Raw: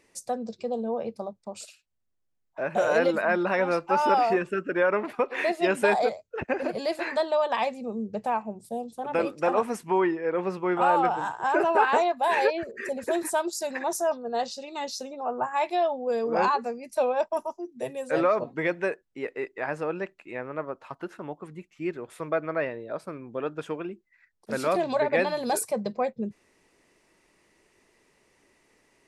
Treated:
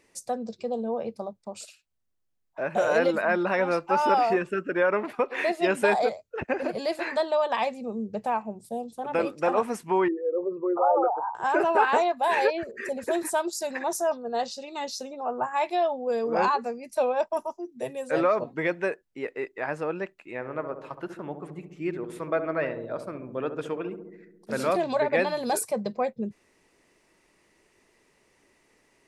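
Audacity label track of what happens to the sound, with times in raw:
10.080000	11.350000	formant sharpening exponent 3
20.340000	24.710000	darkening echo 69 ms, feedback 76%, low-pass 850 Hz, level -7.5 dB

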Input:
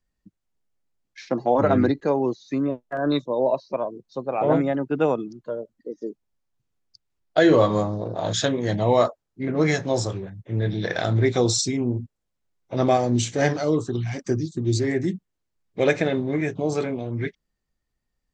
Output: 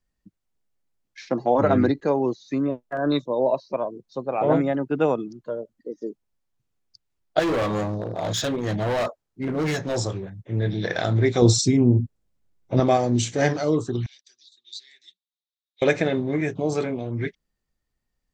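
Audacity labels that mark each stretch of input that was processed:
7.390000	9.970000	overloaded stage gain 21 dB
11.420000	12.800000	low shelf 400 Hz +9.5 dB
14.060000	15.820000	ladder band-pass 3900 Hz, resonance 80%

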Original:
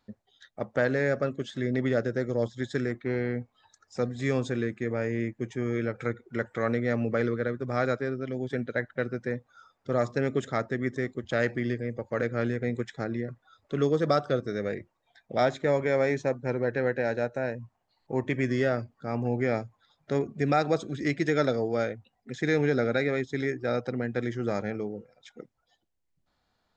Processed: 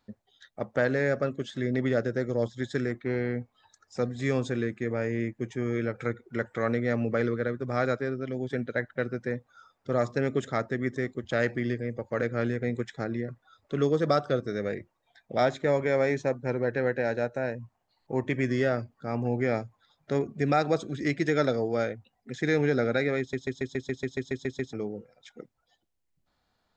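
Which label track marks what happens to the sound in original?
23.190000	23.190000	stutter in place 0.14 s, 11 plays

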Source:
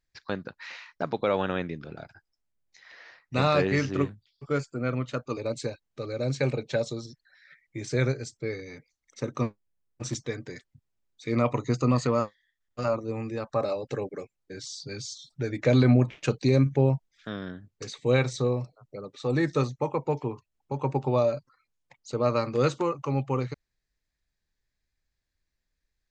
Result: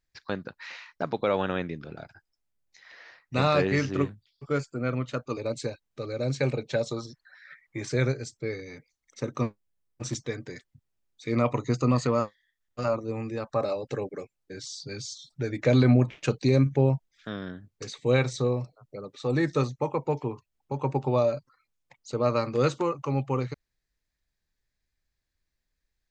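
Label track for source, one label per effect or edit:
6.910000	7.920000	bell 1100 Hz +11.5 dB 1.5 oct

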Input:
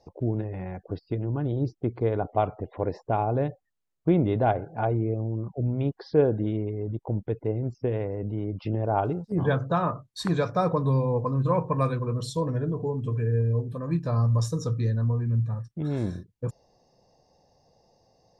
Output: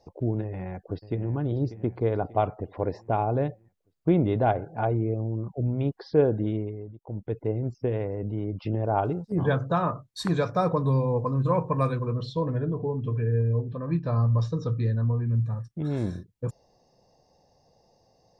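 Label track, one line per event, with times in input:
0.430000	1.320000	echo throw 0.59 s, feedback 50%, level -13.5 dB
6.550000	7.390000	dip -15 dB, fades 0.40 s
12.120000	15.350000	LPF 4200 Hz 24 dB/oct

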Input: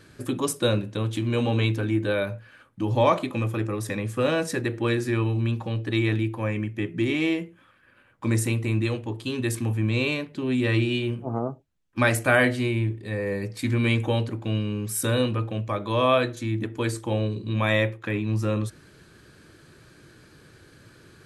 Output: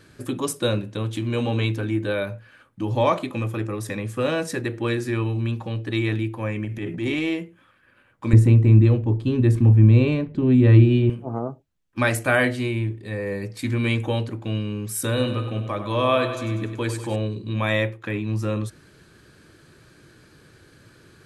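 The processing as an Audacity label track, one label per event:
6.640000	7.340000	transient shaper attack -7 dB, sustain +9 dB
8.330000	11.100000	tilt -4 dB/oct
15.080000	17.160000	feedback echo 97 ms, feedback 59%, level -9.5 dB

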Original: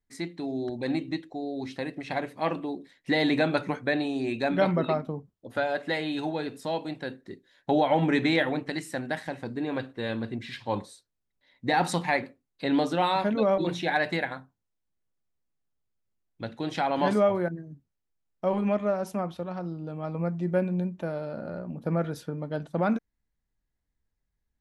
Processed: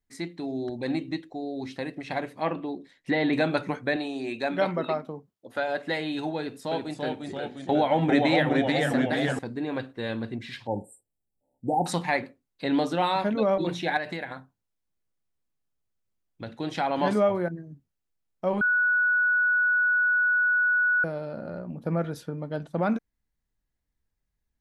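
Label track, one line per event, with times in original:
2.270000	3.330000	treble ducked by the level closes to 2800 Hz, closed at -23.5 dBFS
3.960000	5.680000	HPF 320 Hz 6 dB/oct
6.390000	9.390000	echoes that change speed 0.323 s, each echo -1 st, echoes 3
10.670000	11.860000	brick-wall FIR band-stop 910–7200 Hz
13.970000	16.470000	compressor 2.5:1, threshold -31 dBFS
18.610000	21.040000	bleep 1470 Hz -19.5 dBFS

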